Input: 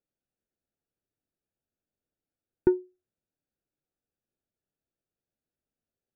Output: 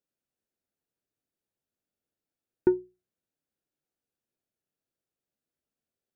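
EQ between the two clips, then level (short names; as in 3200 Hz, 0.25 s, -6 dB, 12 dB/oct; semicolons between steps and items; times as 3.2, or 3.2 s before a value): low shelf 68 Hz -8.5 dB; notches 60/120/180 Hz; 0.0 dB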